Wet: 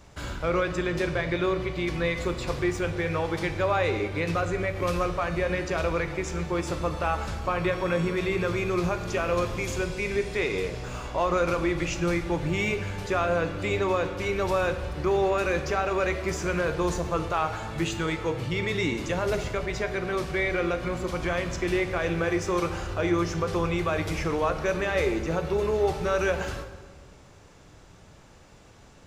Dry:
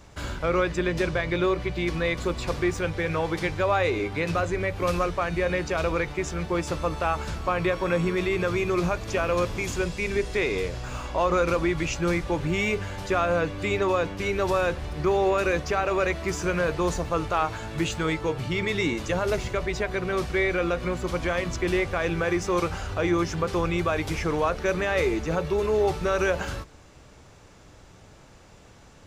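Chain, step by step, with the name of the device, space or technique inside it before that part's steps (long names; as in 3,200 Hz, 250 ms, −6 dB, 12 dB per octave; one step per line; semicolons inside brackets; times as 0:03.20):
saturated reverb return (on a send at −7 dB: convolution reverb RT60 1.4 s, pre-delay 12 ms + soft clipping −18.5 dBFS, distortion −17 dB)
on the sum: level −2 dB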